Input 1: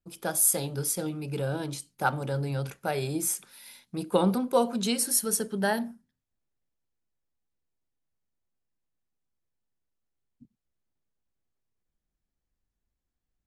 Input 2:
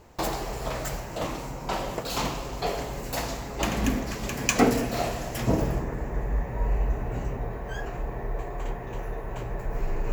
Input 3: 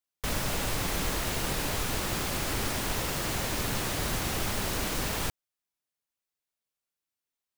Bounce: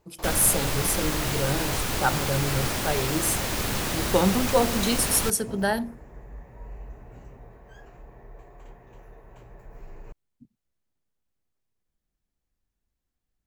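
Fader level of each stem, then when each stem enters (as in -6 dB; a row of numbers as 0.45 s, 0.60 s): +2.0 dB, -15.0 dB, +3.0 dB; 0.00 s, 0.00 s, 0.00 s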